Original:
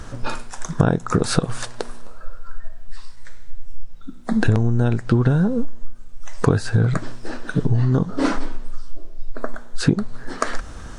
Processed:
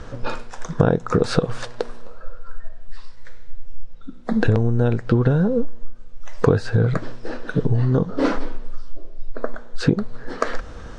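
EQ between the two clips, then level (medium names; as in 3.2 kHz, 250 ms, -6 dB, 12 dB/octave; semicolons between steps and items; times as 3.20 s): low-pass 5 kHz 12 dB/octave; peaking EQ 490 Hz +7.5 dB 0.44 oct; -1.0 dB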